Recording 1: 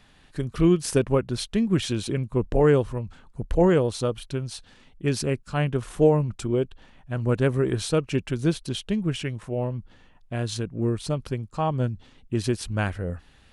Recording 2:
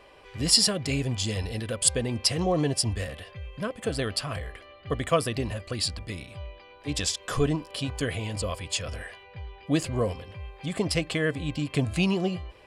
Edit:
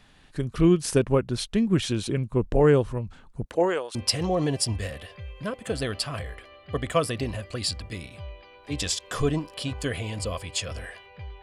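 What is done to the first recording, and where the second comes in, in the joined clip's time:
recording 1
3.44–3.95 s: high-pass 200 Hz -> 1.3 kHz
3.95 s: go over to recording 2 from 2.12 s

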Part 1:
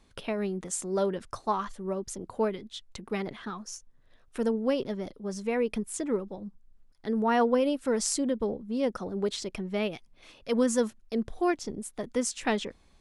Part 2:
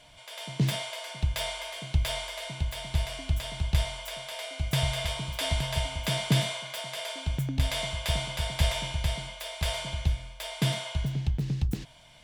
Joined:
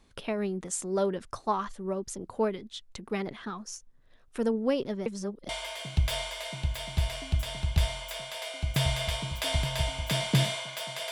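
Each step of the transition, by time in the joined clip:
part 1
5.06–5.49 s: reverse
5.49 s: go over to part 2 from 1.46 s

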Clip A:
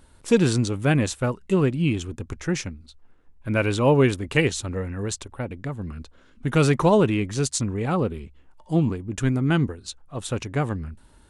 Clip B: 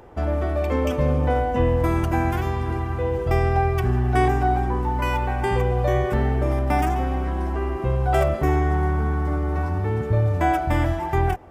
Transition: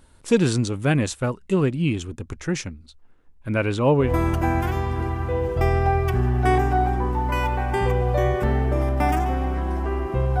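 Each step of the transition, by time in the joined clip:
clip A
3.55–4.13 s: treble shelf 5.1 kHz -8.5 dB
4.05 s: go over to clip B from 1.75 s, crossfade 0.16 s

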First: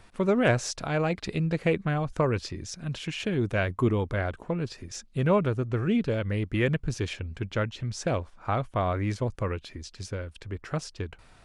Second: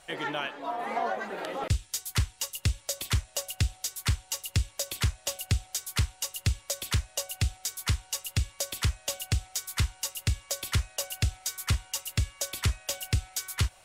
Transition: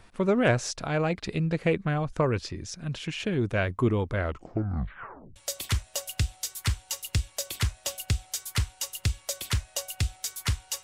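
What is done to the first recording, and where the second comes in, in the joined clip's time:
first
4.17 s: tape stop 1.19 s
5.36 s: go over to second from 2.77 s

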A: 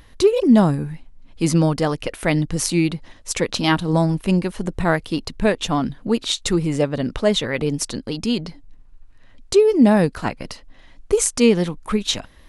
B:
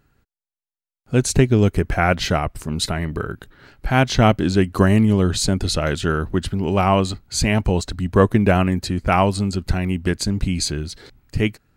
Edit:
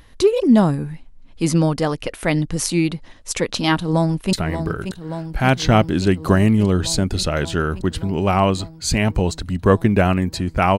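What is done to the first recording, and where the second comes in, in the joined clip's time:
A
3.79–4.33 s: echo throw 580 ms, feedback 80%, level -8.5 dB
4.33 s: go over to B from 2.83 s

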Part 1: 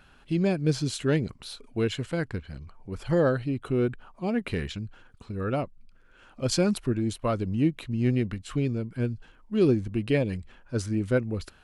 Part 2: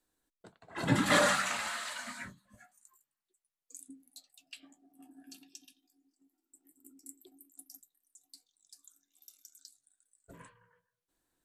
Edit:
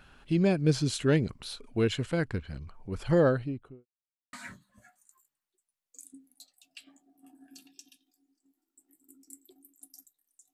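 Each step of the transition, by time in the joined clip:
part 1
3.17–3.86 s: studio fade out
3.86–4.33 s: mute
4.33 s: go over to part 2 from 2.09 s

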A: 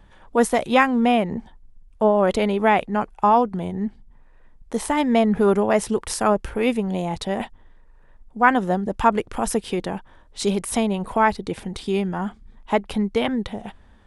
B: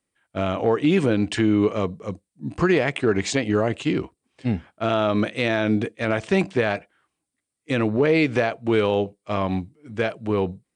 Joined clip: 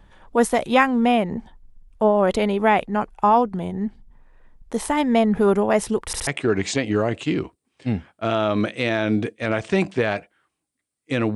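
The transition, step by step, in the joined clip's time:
A
6.06 s: stutter in place 0.07 s, 3 plays
6.27 s: go over to B from 2.86 s

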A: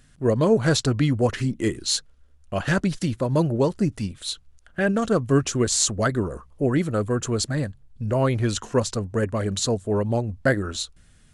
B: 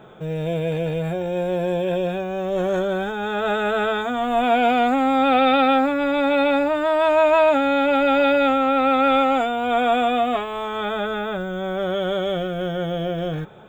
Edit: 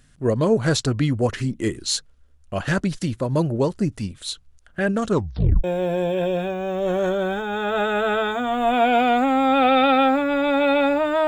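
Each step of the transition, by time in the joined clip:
A
5.08 s: tape stop 0.56 s
5.64 s: go over to B from 1.34 s

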